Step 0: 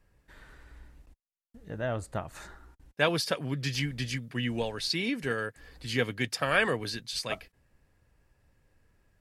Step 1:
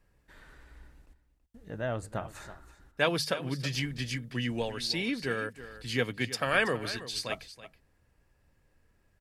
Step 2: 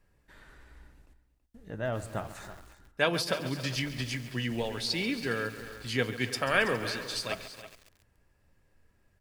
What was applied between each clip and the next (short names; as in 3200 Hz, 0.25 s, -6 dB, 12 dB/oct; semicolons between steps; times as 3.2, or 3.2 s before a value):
notches 50/100/150 Hz; echo 0.327 s -14.5 dB; gain -1 dB
on a send at -14.5 dB: reverb RT60 0.30 s, pre-delay 3 ms; on the sum: lo-fi delay 0.137 s, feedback 80%, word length 7-bit, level -13.5 dB